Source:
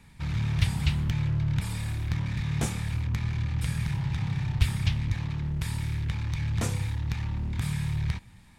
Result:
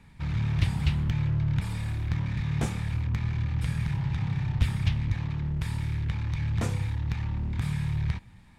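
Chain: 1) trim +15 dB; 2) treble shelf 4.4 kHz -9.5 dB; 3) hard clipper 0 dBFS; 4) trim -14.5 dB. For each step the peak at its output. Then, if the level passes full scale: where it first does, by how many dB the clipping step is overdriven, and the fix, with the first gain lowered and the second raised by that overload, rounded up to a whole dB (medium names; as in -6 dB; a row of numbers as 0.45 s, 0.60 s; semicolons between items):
+6.0 dBFS, +5.5 dBFS, 0.0 dBFS, -14.5 dBFS; step 1, 5.5 dB; step 1 +9 dB, step 4 -8.5 dB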